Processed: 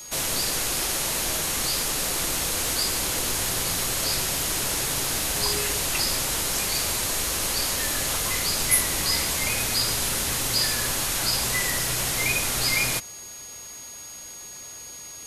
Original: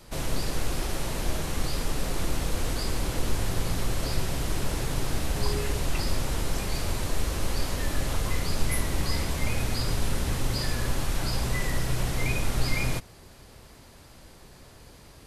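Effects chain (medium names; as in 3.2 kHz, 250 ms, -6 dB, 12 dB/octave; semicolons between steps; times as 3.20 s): tilt EQ +3 dB/octave; whistle 6.6 kHz -43 dBFS; trim +4 dB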